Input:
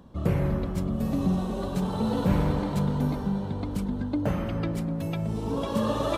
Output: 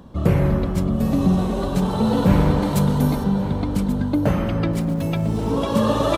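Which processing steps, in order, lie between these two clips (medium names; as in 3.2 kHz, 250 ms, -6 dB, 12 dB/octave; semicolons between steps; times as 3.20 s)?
2.62–3.24 s: treble shelf 6.8 kHz +12 dB; 4.71–5.49 s: crackle 480 per s -47 dBFS; on a send: delay 1134 ms -15.5 dB; on the sum: trim +7.5 dB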